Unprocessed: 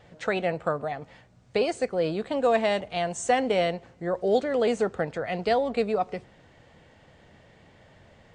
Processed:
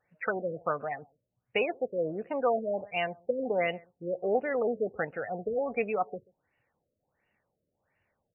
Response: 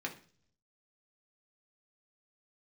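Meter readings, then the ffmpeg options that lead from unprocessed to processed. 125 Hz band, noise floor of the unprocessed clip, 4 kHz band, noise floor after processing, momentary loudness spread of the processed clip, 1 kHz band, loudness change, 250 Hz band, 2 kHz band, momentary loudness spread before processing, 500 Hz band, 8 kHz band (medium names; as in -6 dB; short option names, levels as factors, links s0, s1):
-8.5 dB, -57 dBFS, -8.5 dB, -83 dBFS, 7 LU, -5.5 dB, -5.0 dB, -7.0 dB, -2.5 dB, 8 LU, -5.0 dB, under -40 dB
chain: -filter_complex "[0:a]bandreject=f=660:w=19,afftdn=nr=19:nf=-35,lowshelf=f=220:g=-5.5,crystalizer=i=9:c=0,asplit=2[s0][s1];[s1]adelay=134.1,volume=0.0501,highshelf=f=4000:g=-3.02[s2];[s0][s2]amix=inputs=2:normalize=0,afftfilt=real='re*lt(b*sr/1024,630*pow(3000/630,0.5+0.5*sin(2*PI*1.4*pts/sr)))':imag='im*lt(b*sr/1024,630*pow(3000/630,0.5+0.5*sin(2*PI*1.4*pts/sr)))':win_size=1024:overlap=0.75,volume=0.562"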